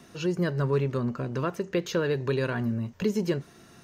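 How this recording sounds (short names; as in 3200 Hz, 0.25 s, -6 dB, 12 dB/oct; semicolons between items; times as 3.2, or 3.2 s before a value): noise floor -54 dBFS; spectral tilt -6.5 dB/oct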